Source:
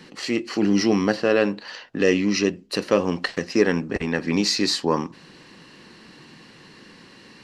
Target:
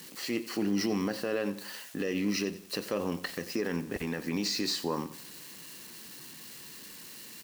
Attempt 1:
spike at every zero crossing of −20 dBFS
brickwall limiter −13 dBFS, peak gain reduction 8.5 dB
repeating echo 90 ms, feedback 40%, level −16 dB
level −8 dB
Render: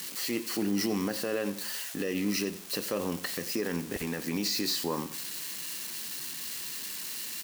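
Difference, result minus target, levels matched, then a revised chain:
spike at every zero crossing: distortion +10 dB
spike at every zero crossing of −30 dBFS
brickwall limiter −13 dBFS, peak gain reduction 8.5 dB
repeating echo 90 ms, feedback 40%, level −16 dB
level −8 dB

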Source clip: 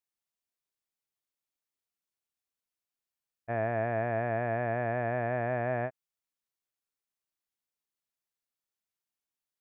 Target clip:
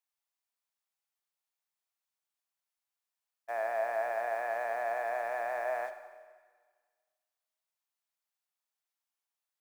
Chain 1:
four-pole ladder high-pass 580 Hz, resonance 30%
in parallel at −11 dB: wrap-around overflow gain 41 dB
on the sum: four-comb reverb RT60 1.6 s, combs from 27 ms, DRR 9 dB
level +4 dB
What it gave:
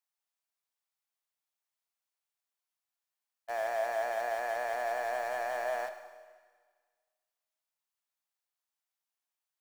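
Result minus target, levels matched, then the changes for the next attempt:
wrap-around overflow: distortion −11 dB
change: wrap-around overflow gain 51 dB

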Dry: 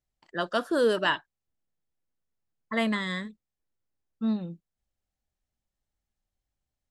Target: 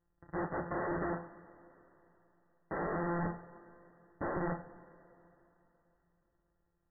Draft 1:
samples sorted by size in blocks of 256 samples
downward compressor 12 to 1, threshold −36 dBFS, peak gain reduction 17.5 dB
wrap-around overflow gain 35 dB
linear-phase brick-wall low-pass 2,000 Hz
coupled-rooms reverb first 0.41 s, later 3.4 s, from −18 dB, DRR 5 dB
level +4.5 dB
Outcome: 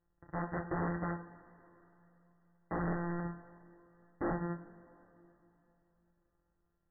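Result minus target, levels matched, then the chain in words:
downward compressor: peak gain reduction +7 dB
samples sorted by size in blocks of 256 samples
downward compressor 12 to 1, threshold −28.5 dBFS, peak gain reduction 10.5 dB
wrap-around overflow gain 35 dB
linear-phase brick-wall low-pass 2,000 Hz
coupled-rooms reverb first 0.41 s, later 3.4 s, from −18 dB, DRR 5 dB
level +4.5 dB

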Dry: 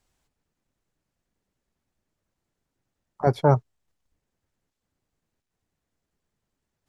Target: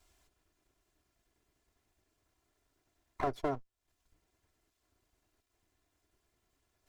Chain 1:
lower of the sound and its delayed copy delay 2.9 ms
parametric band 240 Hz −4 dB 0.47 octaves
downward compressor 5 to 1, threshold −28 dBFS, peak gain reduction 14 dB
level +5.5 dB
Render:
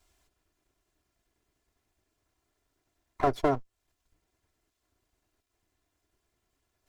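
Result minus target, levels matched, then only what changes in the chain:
downward compressor: peak gain reduction −8.5 dB
change: downward compressor 5 to 1, threshold −38.5 dBFS, peak gain reduction 22.5 dB

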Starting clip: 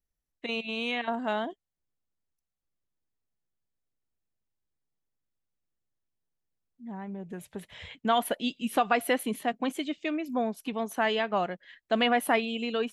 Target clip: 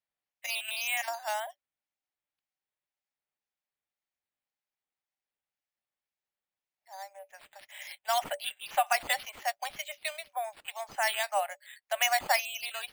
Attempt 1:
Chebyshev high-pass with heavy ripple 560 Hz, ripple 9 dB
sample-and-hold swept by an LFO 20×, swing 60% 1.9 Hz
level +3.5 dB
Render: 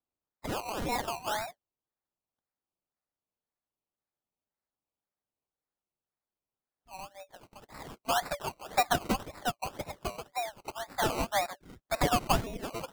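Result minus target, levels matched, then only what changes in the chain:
sample-and-hold swept by an LFO: distortion +14 dB
change: sample-and-hold swept by an LFO 6×, swing 60% 1.9 Hz

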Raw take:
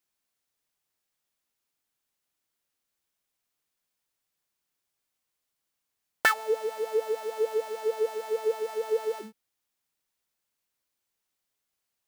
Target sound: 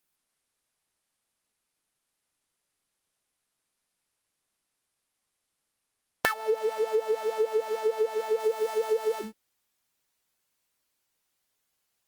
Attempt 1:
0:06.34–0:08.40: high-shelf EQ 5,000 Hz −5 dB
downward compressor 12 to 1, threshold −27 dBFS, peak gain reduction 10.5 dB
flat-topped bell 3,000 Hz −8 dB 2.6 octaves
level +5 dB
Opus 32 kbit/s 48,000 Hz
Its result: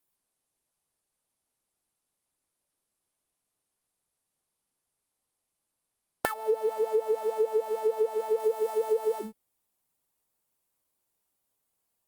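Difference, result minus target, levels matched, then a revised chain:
4,000 Hz band −7.5 dB
0:06.34–0:08.40: high-shelf EQ 5,000 Hz −5 dB
downward compressor 12 to 1, threshold −27 dBFS, peak gain reduction 10.5 dB
level +5 dB
Opus 32 kbit/s 48,000 Hz

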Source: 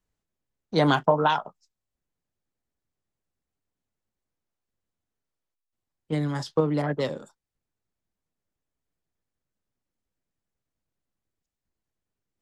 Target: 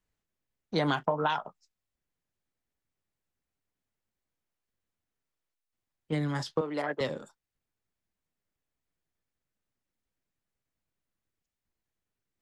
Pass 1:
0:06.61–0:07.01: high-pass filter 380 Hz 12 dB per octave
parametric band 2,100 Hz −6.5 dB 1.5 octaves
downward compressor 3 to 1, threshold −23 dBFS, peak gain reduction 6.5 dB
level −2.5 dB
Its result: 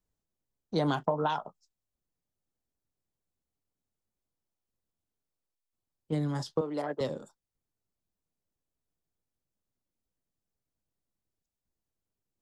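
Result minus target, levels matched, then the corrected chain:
2,000 Hz band −6.0 dB
0:06.61–0:07.01: high-pass filter 380 Hz 12 dB per octave
parametric band 2,100 Hz +4 dB 1.5 octaves
downward compressor 3 to 1, threshold −23 dBFS, peak gain reduction 7.5 dB
level −2.5 dB

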